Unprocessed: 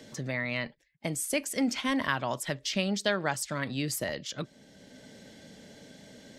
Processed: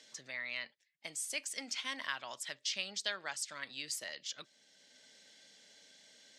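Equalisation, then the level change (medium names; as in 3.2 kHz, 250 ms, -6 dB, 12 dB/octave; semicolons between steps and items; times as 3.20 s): distance through air 98 m; differentiator; +5.0 dB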